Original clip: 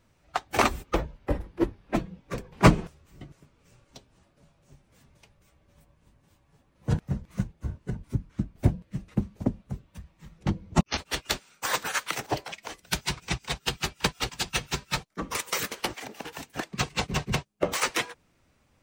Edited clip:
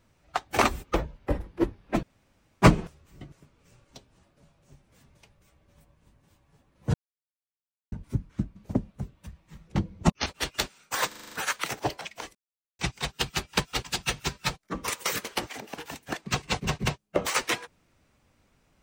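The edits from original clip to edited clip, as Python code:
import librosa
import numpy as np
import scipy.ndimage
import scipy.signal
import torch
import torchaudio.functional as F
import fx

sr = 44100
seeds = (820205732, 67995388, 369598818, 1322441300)

y = fx.edit(x, sr, fx.room_tone_fill(start_s=2.03, length_s=0.59),
    fx.silence(start_s=6.94, length_s=0.98),
    fx.cut(start_s=8.56, length_s=0.71),
    fx.stutter(start_s=11.79, slice_s=0.04, count=7),
    fx.silence(start_s=12.82, length_s=0.44), tone=tone)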